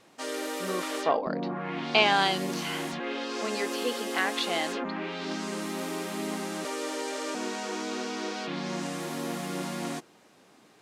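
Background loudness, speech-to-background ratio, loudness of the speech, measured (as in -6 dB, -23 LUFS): -33.5 LUFS, 4.5 dB, -29.0 LUFS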